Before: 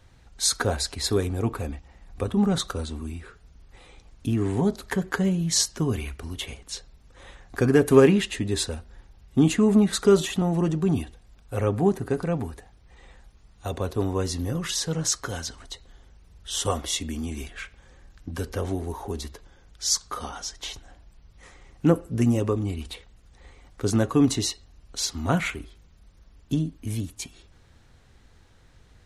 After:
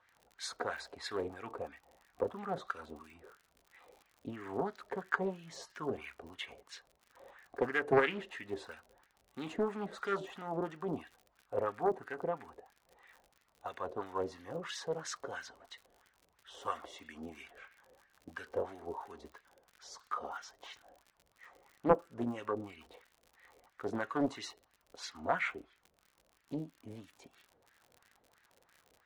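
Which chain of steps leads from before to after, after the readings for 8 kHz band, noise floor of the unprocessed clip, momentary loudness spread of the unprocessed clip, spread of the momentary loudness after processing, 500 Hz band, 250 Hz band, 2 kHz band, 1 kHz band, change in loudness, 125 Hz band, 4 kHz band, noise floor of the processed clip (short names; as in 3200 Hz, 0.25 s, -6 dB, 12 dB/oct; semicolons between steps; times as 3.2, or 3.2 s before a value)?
-24.0 dB, -55 dBFS, 18 LU, 18 LU, -11.0 dB, -18.0 dB, -5.5 dB, -4.5 dB, -13.5 dB, -23.0 dB, -18.0 dB, -74 dBFS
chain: wah 3 Hz 520–1900 Hz, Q 2.3; crackle 71/s -47 dBFS; Doppler distortion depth 0.56 ms; gain -1 dB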